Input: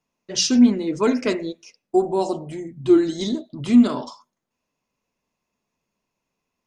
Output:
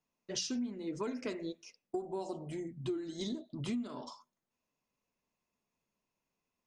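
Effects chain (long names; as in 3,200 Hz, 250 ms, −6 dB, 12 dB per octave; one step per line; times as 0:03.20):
downward compressor 12 to 1, threshold −26 dBFS, peak gain reduction 18 dB
level −8 dB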